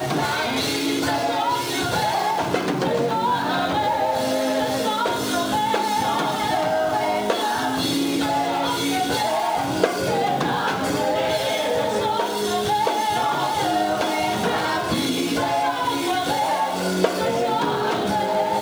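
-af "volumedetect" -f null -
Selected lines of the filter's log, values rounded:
mean_volume: -21.9 dB
max_volume: -5.3 dB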